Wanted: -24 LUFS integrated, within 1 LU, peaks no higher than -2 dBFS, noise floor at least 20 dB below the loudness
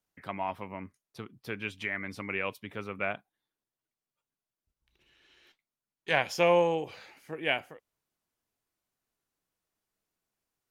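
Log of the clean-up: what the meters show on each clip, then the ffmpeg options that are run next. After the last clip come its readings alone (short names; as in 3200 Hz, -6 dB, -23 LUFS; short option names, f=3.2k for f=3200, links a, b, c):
loudness -31.0 LUFS; peak -10.0 dBFS; loudness target -24.0 LUFS
-> -af "volume=7dB"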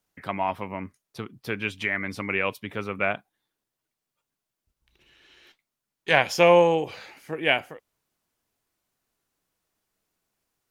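loudness -24.0 LUFS; peak -3.0 dBFS; noise floor -86 dBFS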